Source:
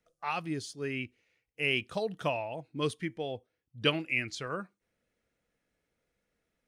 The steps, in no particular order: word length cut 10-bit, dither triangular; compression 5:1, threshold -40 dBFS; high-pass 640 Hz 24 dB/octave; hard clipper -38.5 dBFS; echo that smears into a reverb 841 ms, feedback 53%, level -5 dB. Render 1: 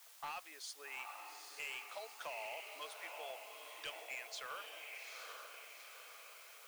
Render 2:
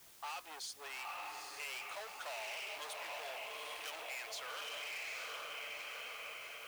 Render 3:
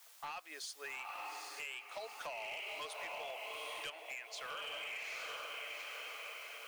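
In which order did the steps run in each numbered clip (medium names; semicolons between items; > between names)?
compression > echo that smears into a reverb > word length cut > high-pass > hard clipper; echo that smears into a reverb > hard clipper > high-pass > compression > word length cut; echo that smears into a reverb > word length cut > high-pass > compression > hard clipper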